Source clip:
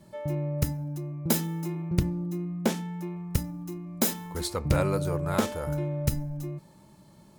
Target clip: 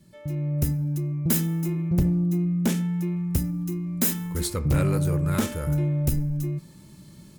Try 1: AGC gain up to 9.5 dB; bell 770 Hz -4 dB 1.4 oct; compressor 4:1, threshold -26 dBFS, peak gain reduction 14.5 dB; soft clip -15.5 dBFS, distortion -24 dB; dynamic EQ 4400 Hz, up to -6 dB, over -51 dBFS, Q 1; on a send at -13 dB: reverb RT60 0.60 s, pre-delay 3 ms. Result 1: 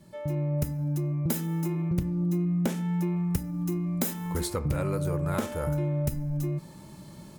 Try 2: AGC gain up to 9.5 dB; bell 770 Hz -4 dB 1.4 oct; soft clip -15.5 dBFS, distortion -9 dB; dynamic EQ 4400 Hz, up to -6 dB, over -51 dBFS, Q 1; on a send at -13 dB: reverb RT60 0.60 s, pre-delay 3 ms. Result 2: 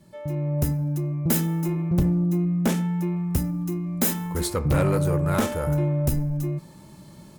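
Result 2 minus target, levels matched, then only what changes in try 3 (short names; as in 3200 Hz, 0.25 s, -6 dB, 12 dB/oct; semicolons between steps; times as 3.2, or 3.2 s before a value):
1000 Hz band +5.5 dB
change: bell 770 Hz -15.5 dB 1.4 oct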